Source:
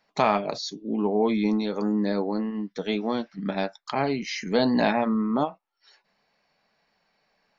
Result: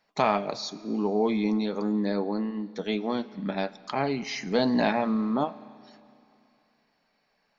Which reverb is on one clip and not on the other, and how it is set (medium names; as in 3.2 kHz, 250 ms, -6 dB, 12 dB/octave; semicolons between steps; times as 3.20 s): Schroeder reverb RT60 2.7 s, combs from 29 ms, DRR 17.5 dB; trim -2 dB